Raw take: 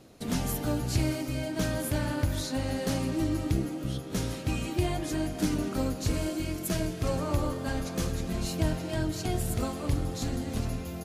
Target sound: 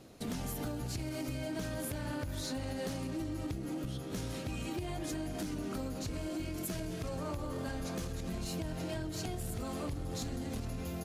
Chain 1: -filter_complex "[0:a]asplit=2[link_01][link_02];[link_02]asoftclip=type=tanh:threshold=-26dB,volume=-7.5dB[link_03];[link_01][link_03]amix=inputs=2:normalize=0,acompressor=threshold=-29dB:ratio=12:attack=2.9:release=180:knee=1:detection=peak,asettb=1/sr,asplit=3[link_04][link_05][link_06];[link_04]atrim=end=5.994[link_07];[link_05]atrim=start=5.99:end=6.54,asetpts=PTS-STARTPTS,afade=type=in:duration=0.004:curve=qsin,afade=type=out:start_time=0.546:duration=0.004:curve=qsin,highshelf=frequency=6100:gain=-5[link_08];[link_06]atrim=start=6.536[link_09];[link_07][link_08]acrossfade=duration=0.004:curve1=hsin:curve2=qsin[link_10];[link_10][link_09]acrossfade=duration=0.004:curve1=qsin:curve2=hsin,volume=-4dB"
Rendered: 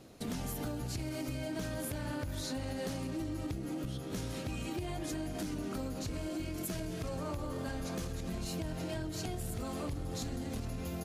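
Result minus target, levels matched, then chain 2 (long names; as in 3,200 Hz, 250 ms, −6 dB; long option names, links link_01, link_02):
soft clipping: distortion −7 dB
-filter_complex "[0:a]asplit=2[link_01][link_02];[link_02]asoftclip=type=tanh:threshold=-36.5dB,volume=-7.5dB[link_03];[link_01][link_03]amix=inputs=2:normalize=0,acompressor=threshold=-29dB:ratio=12:attack=2.9:release=180:knee=1:detection=peak,asettb=1/sr,asplit=3[link_04][link_05][link_06];[link_04]atrim=end=5.994[link_07];[link_05]atrim=start=5.99:end=6.54,asetpts=PTS-STARTPTS,afade=type=in:duration=0.004:curve=qsin,afade=type=out:start_time=0.546:duration=0.004:curve=qsin,highshelf=frequency=6100:gain=-5[link_08];[link_06]atrim=start=6.536[link_09];[link_07][link_08]acrossfade=duration=0.004:curve1=hsin:curve2=qsin[link_10];[link_10][link_09]acrossfade=duration=0.004:curve1=qsin:curve2=hsin,volume=-4dB"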